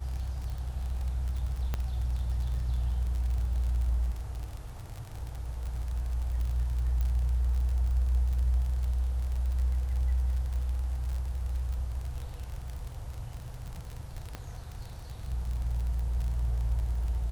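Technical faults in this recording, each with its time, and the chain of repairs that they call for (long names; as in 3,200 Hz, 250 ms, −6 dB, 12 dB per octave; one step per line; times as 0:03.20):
surface crackle 41 per second −34 dBFS
0:01.74: click −18 dBFS
0:07.01: click −21 dBFS
0:14.35: click −22 dBFS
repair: click removal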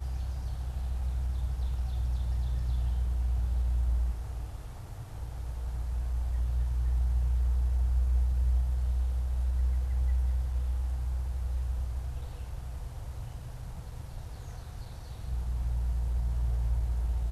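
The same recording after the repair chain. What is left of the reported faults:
0:01.74: click
0:14.35: click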